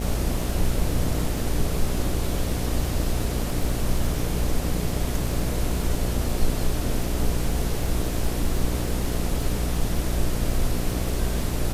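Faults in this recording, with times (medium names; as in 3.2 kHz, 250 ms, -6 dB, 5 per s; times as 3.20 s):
buzz 60 Hz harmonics 12 -28 dBFS
crackle 23 per s -29 dBFS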